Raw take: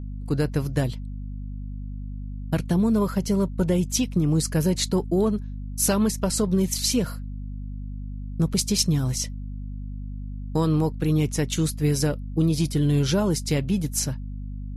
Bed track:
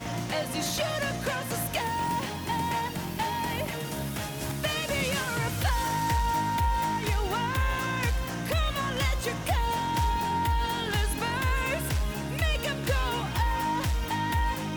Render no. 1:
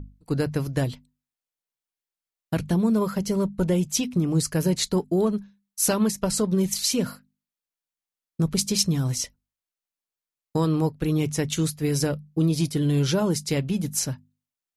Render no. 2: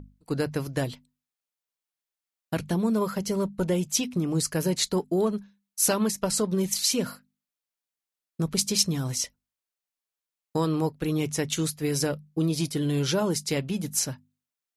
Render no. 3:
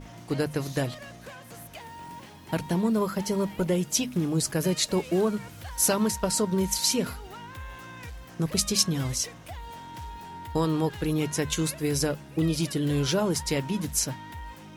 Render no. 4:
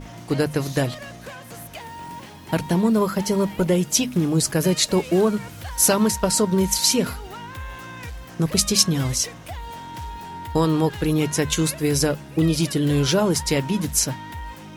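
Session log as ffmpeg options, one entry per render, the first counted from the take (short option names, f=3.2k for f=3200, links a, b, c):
-af "bandreject=f=50:t=h:w=6,bandreject=f=100:t=h:w=6,bandreject=f=150:t=h:w=6,bandreject=f=200:t=h:w=6,bandreject=f=250:t=h:w=6"
-af "lowshelf=f=190:g=-8.5"
-filter_complex "[1:a]volume=-13.5dB[a];[0:a][a]amix=inputs=2:normalize=0"
-af "volume=6dB"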